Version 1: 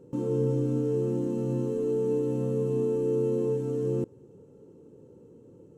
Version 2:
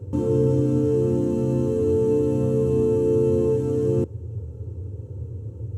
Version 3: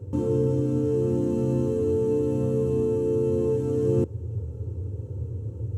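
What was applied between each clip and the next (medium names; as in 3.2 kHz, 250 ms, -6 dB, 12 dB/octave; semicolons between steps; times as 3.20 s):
band noise 78–120 Hz -39 dBFS; trim +6.5 dB
gain riding within 4 dB 0.5 s; trim -3 dB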